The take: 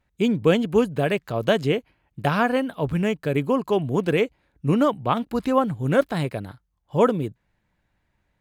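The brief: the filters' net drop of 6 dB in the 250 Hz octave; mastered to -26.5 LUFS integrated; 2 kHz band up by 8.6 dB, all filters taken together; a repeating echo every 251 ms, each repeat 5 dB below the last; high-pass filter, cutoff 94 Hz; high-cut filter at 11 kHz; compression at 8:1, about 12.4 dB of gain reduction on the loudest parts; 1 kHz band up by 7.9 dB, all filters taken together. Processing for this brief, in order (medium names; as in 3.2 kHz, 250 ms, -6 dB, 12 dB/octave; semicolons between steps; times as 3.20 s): high-pass 94 Hz; low-pass 11 kHz; peaking EQ 250 Hz -8 dB; peaking EQ 1 kHz +8 dB; peaking EQ 2 kHz +8.5 dB; compression 8:1, threshold -22 dBFS; feedback delay 251 ms, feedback 56%, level -5 dB; trim +0.5 dB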